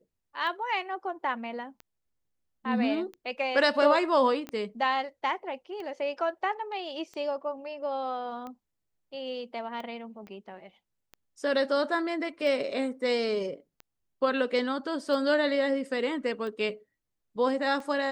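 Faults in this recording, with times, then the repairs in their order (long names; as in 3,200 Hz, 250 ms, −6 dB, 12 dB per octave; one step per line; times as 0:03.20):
scratch tick 45 rpm −28 dBFS
0:04.49: click −24 dBFS
0:10.27: click −33 dBFS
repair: click removal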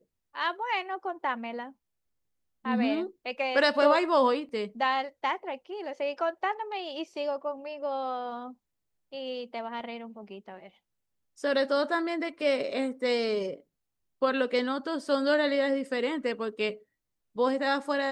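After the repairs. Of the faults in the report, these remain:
0:04.49: click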